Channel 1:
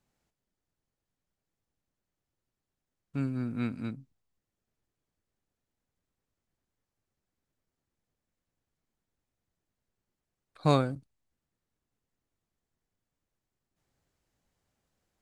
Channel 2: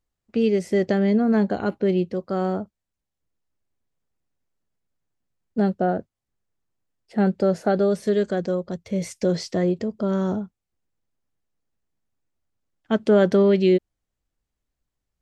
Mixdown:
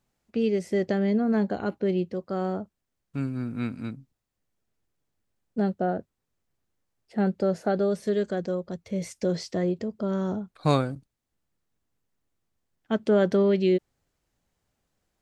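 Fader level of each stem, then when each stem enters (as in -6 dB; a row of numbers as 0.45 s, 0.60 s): +2.0 dB, -4.5 dB; 0.00 s, 0.00 s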